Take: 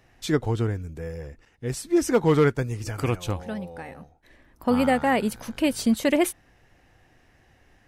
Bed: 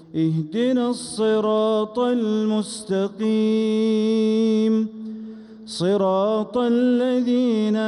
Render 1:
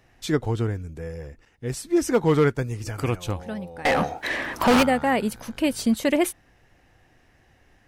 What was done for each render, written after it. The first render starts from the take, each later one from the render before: 0.8–1.2 brick-wall FIR low-pass 13000 Hz; 3.85–4.83 overdrive pedal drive 39 dB, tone 4300 Hz, clips at -10.5 dBFS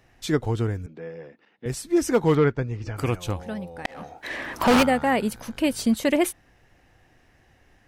0.86–1.66 Chebyshev band-pass 190–4000 Hz, order 3; 2.35–2.97 air absorption 180 m; 3.86–4.72 fade in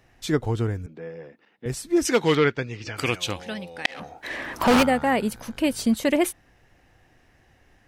2.05–4 weighting filter D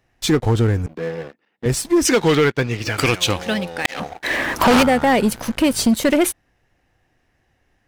compressor 2.5:1, threshold -22 dBFS, peak gain reduction 5.5 dB; sample leveller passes 3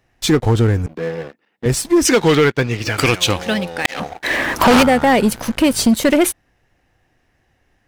gain +2.5 dB

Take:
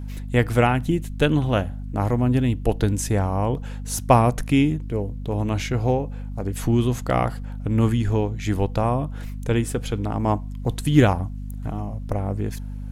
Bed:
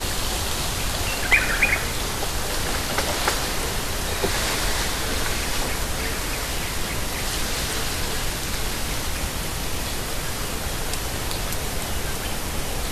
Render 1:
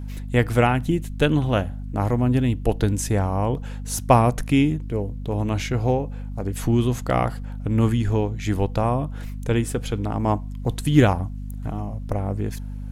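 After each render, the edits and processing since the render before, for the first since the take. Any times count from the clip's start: nothing audible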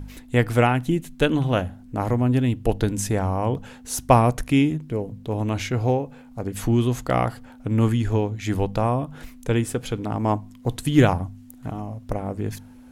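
de-hum 50 Hz, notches 4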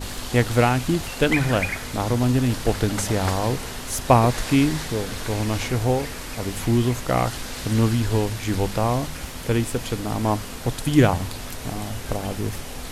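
add bed -7.5 dB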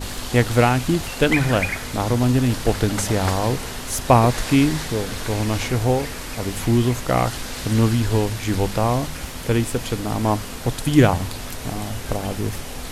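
gain +2 dB; limiter -1 dBFS, peak gain reduction 1 dB

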